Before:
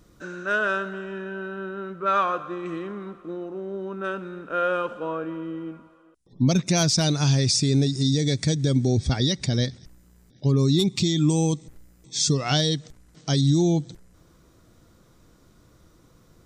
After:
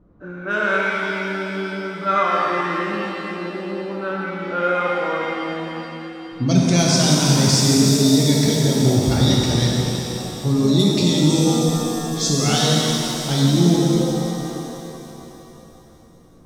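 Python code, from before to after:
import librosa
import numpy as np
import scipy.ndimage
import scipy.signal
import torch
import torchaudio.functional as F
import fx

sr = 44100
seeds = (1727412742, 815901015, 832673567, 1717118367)

y = fx.env_lowpass(x, sr, base_hz=870.0, full_db=-18.5)
y = fx.echo_wet_highpass(y, sr, ms=185, feedback_pct=73, hz=4600.0, wet_db=-7.5)
y = fx.rev_shimmer(y, sr, seeds[0], rt60_s=3.2, semitones=7, shimmer_db=-8, drr_db=-4.0)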